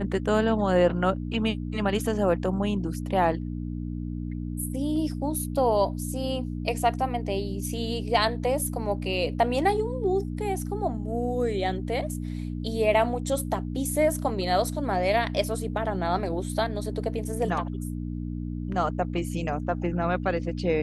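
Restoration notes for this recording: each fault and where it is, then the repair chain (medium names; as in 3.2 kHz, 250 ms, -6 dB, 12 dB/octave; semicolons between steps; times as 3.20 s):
hum 60 Hz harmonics 5 -32 dBFS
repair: de-hum 60 Hz, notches 5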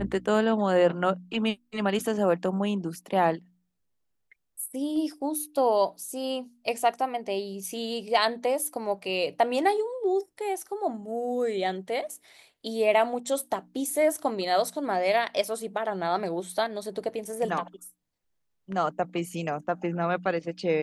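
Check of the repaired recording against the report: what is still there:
nothing left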